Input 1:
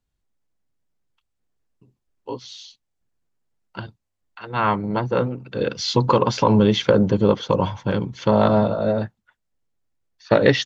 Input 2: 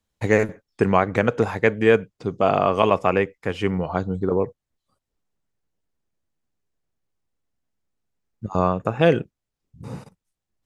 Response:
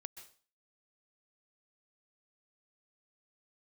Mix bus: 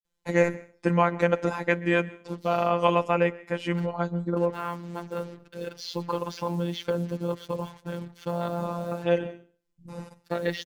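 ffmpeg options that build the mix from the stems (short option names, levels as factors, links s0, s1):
-filter_complex "[0:a]acrusher=bits=5:mix=0:aa=0.5,volume=0.335,asplit=3[s0][s1][s2];[s1]volume=0.0668[s3];[1:a]aecho=1:1:3.8:0.41,adelay=50,volume=0.708,asplit=2[s4][s5];[s5]volume=0.596[s6];[s2]apad=whole_len=472137[s7];[s4][s7]sidechaincompress=threshold=0.01:ratio=8:attack=48:release=700[s8];[2:a]atrim=start_sample=2205[s9];[s6][s9]afir=irnorm=-1:irlink=0[s10];[s3]aecho=0:1:118|236|354|472|590:1|0.38|0.144|0.0549|0.0209[s11];[s0][s8][s10][s11]amix=inputs=4:normalize=0,afftfilt=real='hypot(re,im)*cos(PI*b)':imag='0':win_size=1024:overlap=0.75"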